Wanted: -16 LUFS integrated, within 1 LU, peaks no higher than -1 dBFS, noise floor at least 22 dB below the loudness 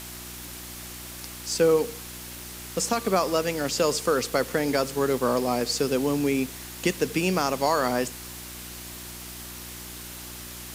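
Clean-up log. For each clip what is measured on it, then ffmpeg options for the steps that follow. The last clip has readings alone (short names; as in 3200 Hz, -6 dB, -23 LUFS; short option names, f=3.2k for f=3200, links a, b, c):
hum 60 Hz; harmonics up to 360 Hz; hum level -43 dBFS; noise floor -40 dBFS; noise floor target -47 dBFS; loudness -25.0 LUFS; peak -10.5 dBFS; loudness target -16.0 LUFS
-> -af "bandreject=f=60:t=h:w=4,bandreject=f=120:t=h:w=4,bandreject=f=180:t=h:w=4,bandreject=f=240:t=h:w=4,bandreject=f=300:t=h:w=4,bandreject=f=360:t=h:w=4"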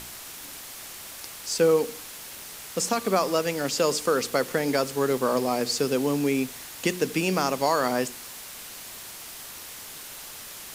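hum none; noise floor -41 dBFS; noise floor target -48 dBFS
-> -af "afftdn=nr=7:nf=-41"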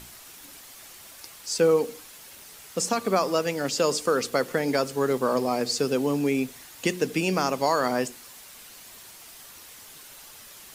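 noise floor -47 dBFS; noise floor target -48 dBFS
-> -af "afftdn=nr=6:nf=-47"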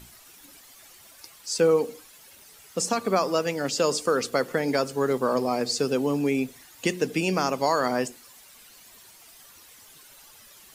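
noise floor -52 dBFS; loudness -25.5 LUFS; peak -11.0 dBFS; loudness target -16.0 LUFS
-> -af "volume=9.5dB"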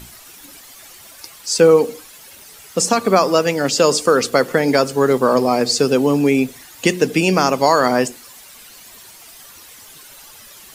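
loudness -16.0 LUFS; peak -1.5 dBFS; noise floor -42 dBFS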